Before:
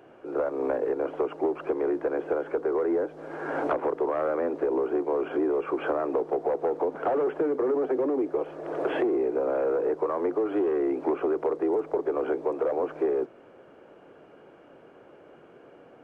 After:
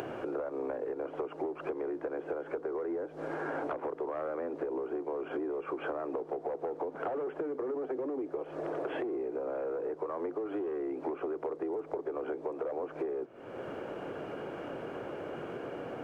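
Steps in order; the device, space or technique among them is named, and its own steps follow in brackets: bell 110 Hz +4 dB 0.69 oct; upward and downward compression (upward compressor, threshold -28 dBFS; compressor 6:1, threshold -33 dBFS, peak gain reduction 11 dB)

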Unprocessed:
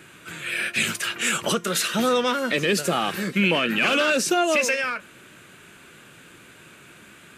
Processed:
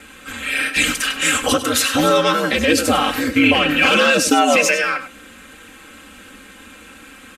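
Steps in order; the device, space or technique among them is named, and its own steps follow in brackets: ring-modulated robot voice (ring modulator 74 Hz; comb 3.8 ms, depth 85%); echo 99 ms -12 dB; gain +7 dB

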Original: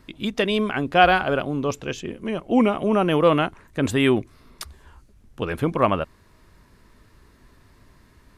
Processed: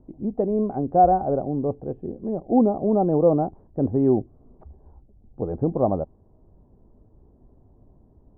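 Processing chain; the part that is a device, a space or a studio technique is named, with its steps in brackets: under water (LPF 650 Hz 24 dB/oct; bell 780 Hz +10 dB 0.28 oct)

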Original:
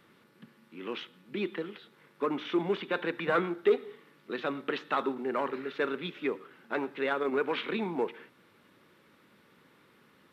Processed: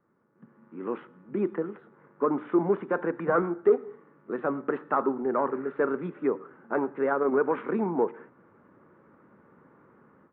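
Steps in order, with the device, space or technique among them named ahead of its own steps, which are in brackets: action camera in a waterproof case (LPF 1400 Hz 24 dB/oct; AGC gain up to 15 dB; gain -9 dB; AAC 64 kbps 48000 Hz)

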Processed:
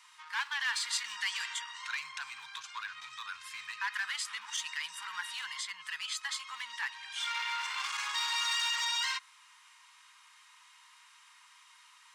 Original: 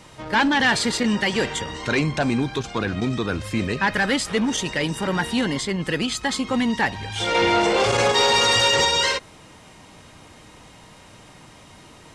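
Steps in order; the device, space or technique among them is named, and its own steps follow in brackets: limiter into clipper (limiter -14.5 dBFS, peak gain reduction 5 dB; hard clip -17.5 dBFS, distortion -22 dB); elliptic high-pass 1000 Hz, stop band 40 dB; 0.89–1.54 bell 7900 Hz +4.5 dB 2.3 oct; gain -8.5 dB

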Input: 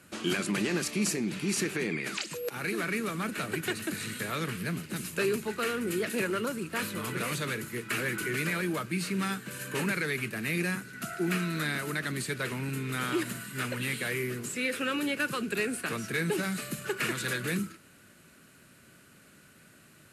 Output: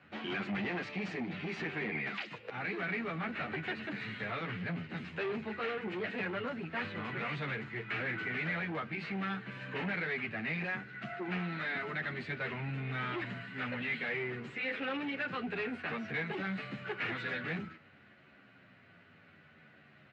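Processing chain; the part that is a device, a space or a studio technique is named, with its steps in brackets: barber-pole flanger into a guitar amplifier (endless flanger 10.4 ms -0.56 Hz; soft clip -31.5 dBFS, distortion -12 dB; speaker cabinet 89–3400 Hz, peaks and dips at 94 Hz +6 dB, 340 Hz -4 dB, 760 Hz +8 dB, 2000 Hz +6 dB)

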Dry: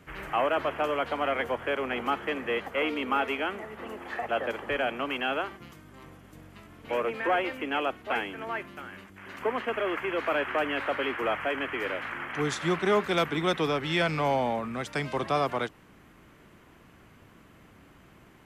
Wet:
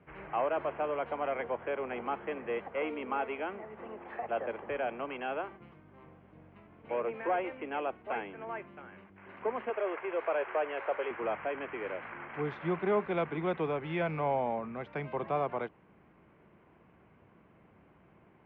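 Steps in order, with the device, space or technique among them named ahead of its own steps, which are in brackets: 9.7–11.11 resonant low shelf 320 Hz -10 dB, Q 1.5; bass cabinet (speaker cabinet 72–2200 Hz, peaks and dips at 82 Hz -4 dB, 120 Hz -4 dB, 270 Hz -6 dB, 1300 Hz -6 dB, 1800 Hz -7 dB); gain -3.5 dB

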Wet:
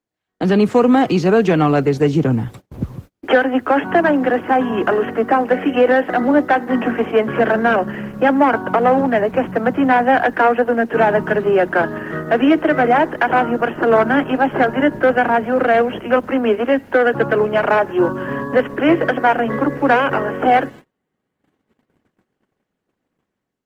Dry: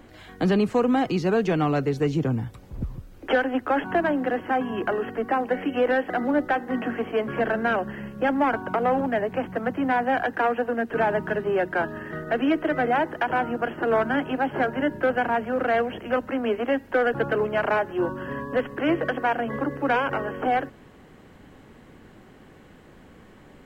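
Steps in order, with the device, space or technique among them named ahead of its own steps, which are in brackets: video call (HPF 110 Hz 12 dB/oct; AGC gain up to 11 dB; gate -34 dBFS, range -36 dB; Opus 16 kbps 48000 Hz)

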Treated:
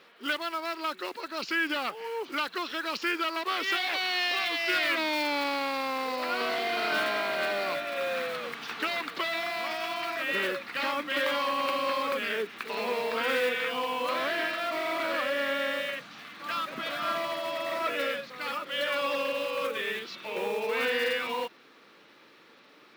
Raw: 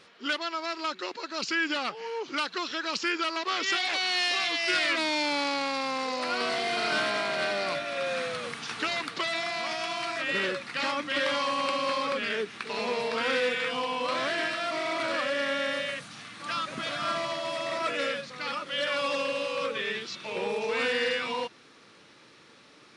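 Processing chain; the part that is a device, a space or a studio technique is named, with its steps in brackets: early digital voice recorder (BPF 220–3900 Hz; block floating point 5-bit)

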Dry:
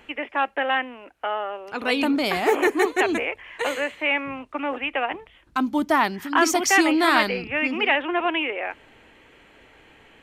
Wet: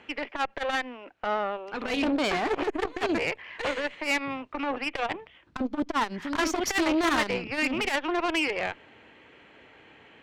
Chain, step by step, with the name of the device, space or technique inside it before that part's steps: valve radio (BPF 90–4700 Hz; tube stage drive 22 dB, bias 0.7; core saturation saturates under 300 Hz); gain +3 dB

